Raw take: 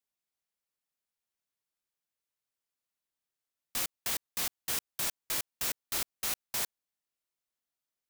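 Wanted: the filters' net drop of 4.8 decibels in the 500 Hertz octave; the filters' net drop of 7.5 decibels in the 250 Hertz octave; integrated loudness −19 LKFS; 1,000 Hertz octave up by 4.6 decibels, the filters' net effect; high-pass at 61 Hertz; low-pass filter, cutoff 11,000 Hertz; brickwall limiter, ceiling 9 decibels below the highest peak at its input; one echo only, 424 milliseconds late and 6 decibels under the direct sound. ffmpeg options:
ffmpeg -i in.wav -af "highpass=61,lowpass=11000,equalizer=frequency=250:width_type=o:gain=-8.5,equalizer=frequency=500:width_type=o:gain=-7.5,equalizer=frequency=1000:width_type=o:gain=8,alimiter=level_in=6.5dB:limit=-24dB:level=0:latency=1,volume=-6.5dB,aecho=1:1:424:0.501,volume=23dB" out.wav

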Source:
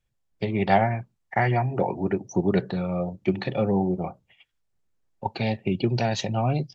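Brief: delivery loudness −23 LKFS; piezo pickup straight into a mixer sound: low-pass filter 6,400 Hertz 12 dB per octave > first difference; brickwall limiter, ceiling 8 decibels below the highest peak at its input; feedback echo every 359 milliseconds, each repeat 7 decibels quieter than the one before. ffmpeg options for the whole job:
ffmpeg -i in.wav -af "alimiter=limit=-15dB:level=0:latency=1,lowpass=6400,aderivative,aecho=1:1:359|718|1077|1436|1795:0.447|0.201|0.0905|0.0407|0.0183,volume=22dB" out.wav

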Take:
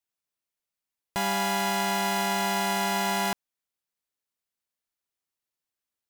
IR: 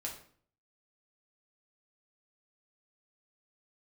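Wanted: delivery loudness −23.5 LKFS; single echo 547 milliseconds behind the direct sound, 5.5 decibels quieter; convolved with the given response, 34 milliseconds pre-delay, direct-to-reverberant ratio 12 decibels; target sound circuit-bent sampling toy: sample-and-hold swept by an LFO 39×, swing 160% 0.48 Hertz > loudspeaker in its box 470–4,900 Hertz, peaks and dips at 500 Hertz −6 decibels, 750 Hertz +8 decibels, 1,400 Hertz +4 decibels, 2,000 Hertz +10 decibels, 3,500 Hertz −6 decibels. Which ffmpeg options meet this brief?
-filter_complex "[0:a]aecho=1:1:547:0.531,asplit=2[link_01][link_02];[1:a]atrim=start_sample=2205,adelay=34[link_03];[link_02][link_03]afir=irnorm=-1:irlink=0,volume=-11.5dB[link_04];[link_01][link_04]amix=inputs=2:normalize=0,acrusher=samples=39:mix=1:aa=0.000001:lfo=1:lforange=62.4:lforate=0.48,highpass=470,equalizer=frequency=500:width_type=q:width=4:gain=-6,equalizer=frequency=750:width_type=q:width=4:gain=8,equalizer=frequency=1400:width_type=q:width=4:gain=4,equalizer=frequency=2000:width_type=q:width=4:gain=10,equalizer=frequency=3500:width_type=q:width=4:gain=-6,lowpass=frequency=4900:width=0.5412,lowpass=frequency=4900:width=1.3066,volume=3dB"

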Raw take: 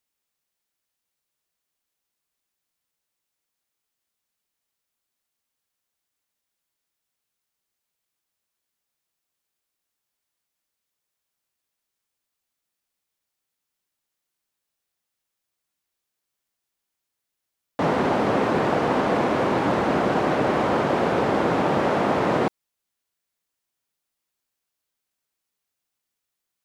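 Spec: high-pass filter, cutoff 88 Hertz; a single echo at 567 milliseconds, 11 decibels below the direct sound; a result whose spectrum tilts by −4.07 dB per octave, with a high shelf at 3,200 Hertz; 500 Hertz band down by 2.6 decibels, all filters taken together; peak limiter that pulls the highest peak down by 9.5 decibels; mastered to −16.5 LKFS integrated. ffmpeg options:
ffmpeg -i in.wav -af "highpass=88,equalizer=frequency=500:width_type=o:gain=-3.5,highshelf=frequency=3200:gain=5,alimiter=limit=-19.5dB:level=0:latency=1,aecho=1:1:567:0.282,volume=12dB" out.wav

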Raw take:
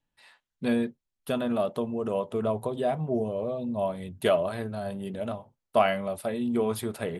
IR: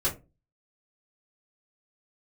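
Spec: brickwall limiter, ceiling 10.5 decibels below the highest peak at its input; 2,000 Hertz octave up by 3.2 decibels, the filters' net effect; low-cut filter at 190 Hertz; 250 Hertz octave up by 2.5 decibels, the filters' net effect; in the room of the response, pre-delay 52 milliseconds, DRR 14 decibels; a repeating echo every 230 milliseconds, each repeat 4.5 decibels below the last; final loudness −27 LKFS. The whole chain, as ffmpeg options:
-filter_complex "[0:a]highpass=190,equalizer=frequency=250:width_type=o:gain=4.5,equalizer=frequency=2000:width_type=o:gain=4,alimiter=limit=-18.5dB:level=0:latency=1,aecho=1:1:230|460|690|920|1150|1380|1610|1840|2070:0.596|0.357|0.214|0.129|0.0772|0.0463|0.0278|0.0167|0.01,asplit=2[link_01][link_02];[1:a]atrim=start_sample=2205,adelay=52[link_03];[link_02][link_03]afir=irnorm=-1:irlink=0,volume=-22.5dB[link_04];[link_01][link_04]amix=inputs=2:normalize=0,volume=1dB"

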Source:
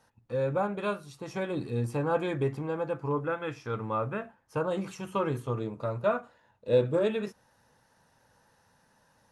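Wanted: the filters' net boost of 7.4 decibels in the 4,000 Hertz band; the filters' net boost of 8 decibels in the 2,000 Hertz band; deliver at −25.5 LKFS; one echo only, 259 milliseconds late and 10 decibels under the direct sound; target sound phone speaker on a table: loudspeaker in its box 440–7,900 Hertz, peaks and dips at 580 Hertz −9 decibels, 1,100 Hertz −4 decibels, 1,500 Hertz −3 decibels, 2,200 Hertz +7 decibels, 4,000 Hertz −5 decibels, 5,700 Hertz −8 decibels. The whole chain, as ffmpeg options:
ffmpeg -i in.wav -af "highpass=frequency=440:width=0.5412,highpass=frequency=440:width=1.3066,equalizer=frequency=580:width_type=q:width=4:gain=-9,equalizer=frequency=1100:width_type=q:width=4:gain=-4,equalizer=frequency=1500:width_type=q:width=4:gain=-3,equalizer=frequency=2200:width_type=q:width=4:gain=7,equalizer=frequency=4000:width_type=q:width=4:gain=-5,equalizer=frequency=5700:width_type=q:width=4:gain=-8,lowpass=frequency=7900:width=0.5412,lowpass=frequency=7900:width=1.3066,equalizer=frequency=2000:width_type=o:gain=8.5,equalizer=frequency=4000:width_type=o:gain=9,aecho=1:1:259:0.316,volume=8dB" out.wav

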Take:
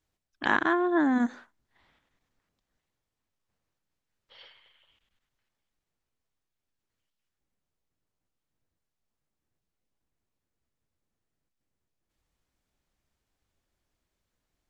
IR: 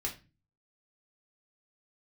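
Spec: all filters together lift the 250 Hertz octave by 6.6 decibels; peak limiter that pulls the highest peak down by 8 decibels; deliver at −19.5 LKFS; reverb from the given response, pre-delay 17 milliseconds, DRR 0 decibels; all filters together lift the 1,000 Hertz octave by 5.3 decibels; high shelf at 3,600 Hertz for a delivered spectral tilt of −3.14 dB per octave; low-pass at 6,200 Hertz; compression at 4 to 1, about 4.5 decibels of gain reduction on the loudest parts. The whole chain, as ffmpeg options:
-filter_complex "[0:a]lowpass=6200,equalizer=frequency=250:width_type=o:gain=7.5,equalizer=frequency=1000:width_type=o:gain=5.5,highshelf=frequency=3600:gain=5.5,acompressor=threshold=-20dB:ratio=4,alimiter=limit=-14dB:level=0:latency=1,asplit=2[link_01][link_02];[1:a]atrim=start_sample=2205,adelay=17[link_03];[link_02][link_03]afir=irnorm=-1:irlink=0,volume=-2dB[link_04];[link_01][link_04]amix=inputs=2:normalize=0,volume=3dB"

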